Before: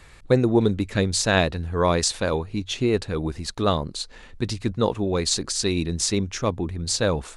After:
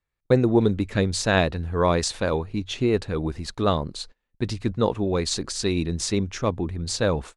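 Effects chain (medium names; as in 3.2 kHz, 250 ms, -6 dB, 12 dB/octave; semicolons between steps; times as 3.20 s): gate -36 dBFS, range -35 dB; treble shelf 4.2 kHz -6.5 dB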